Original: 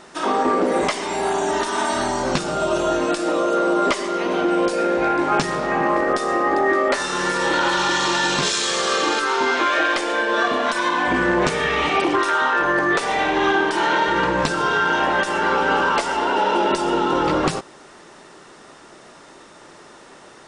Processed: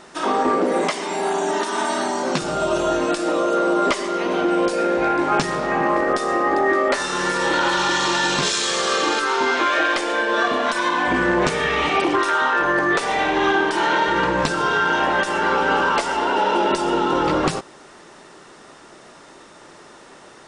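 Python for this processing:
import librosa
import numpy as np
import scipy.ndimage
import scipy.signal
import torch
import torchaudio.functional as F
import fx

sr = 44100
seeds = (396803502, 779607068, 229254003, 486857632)

y = fx.ellip_highpass(x, sr, hz=150.0, order=4, stop_db=40, at=(0.56, 2.42))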